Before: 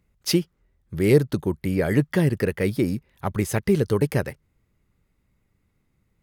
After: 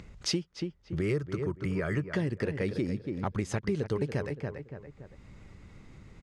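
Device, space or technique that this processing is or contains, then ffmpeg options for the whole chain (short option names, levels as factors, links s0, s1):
upward and downward compression: -filter_complex "[0:a]asettb=1/sr,asplit=3[s0][s1][s2];[s0]atrim=end=1.014[s3];[s1]atrim=start=1.01:end=2.1,asetpts=PTS-STARTPTS,afade=t=in:d=0.004:c=qsin,afade=t=out:st=1.086:d=0.004:c=qsin,equalizer=f=250:t=o:w=0.33:g=-11,equalizer=f=500:t=o:w=0.33:g=-5,equalizer=f=800:t=o:w=0.33:g=-8,equalizer=f=1250:t=o:w=0.33:g=9,equalizer=f=4000:t=o:w=0.33:g=-11[s4];[s2]atrim=start=2.096[s5];[s3][s4]acrossfade=d=0.004:c1=hsin:c2=qsin[s6];[s6][s5]acrossfade=d=0.004:c1=qsin:c2=hsin,lowpass=f=7400:w=0.5412,lowpass=f=7400:w=1.3066,asplit=2[s7][s8];[s8]adelay=284,lowpass=f=2200:p=1,volume=0.316,asplit=2[s9][s10];[s10]adelay=284,lowpass=f=2200:p=1,volume=0.22,asplit=2[s11][s12];[s12]adelay=284,lowpass=f=2200:p=1,volume=0.22[s13];[s7][s9][s11][s13]amix=inputs=4:normalize=0,acompressor=mode=upward:threshold=0.02:ratio=2.5,acompressor=threshold=0.0316:ratio=3"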